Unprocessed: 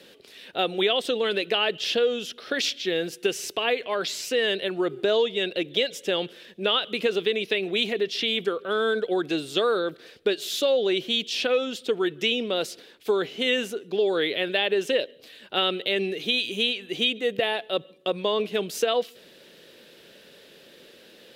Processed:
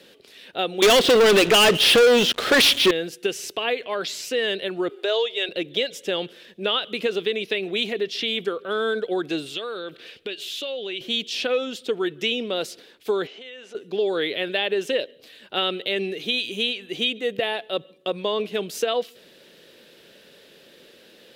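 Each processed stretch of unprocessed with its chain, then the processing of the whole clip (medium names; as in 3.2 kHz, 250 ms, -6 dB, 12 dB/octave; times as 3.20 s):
0.82–2.91 s: low-pass 4.1 kHz + waveshaping leveller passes 5
4.89–5.49 s: high-pass 410 Hz 24 dB/octave + peaking EQ 3.1 kHz +3 dB 1.4 oct
9.46–11.01 s: peaking EQ 2.8 kHz +11 dB 0.85 oct + compression 2:1, threshold -35 dBFS
13.27–13.75 s: compression 8:1, threshold -35 dBFS + high-pass 440 Hz + distance through air 96 m
whole clip: none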